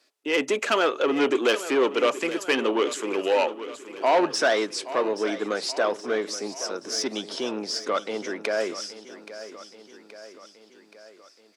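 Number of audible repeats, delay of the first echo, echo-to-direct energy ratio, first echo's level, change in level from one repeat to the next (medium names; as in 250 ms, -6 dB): 4, 825 ms, -12.5 dB, -14.0 dB, -4.5 dB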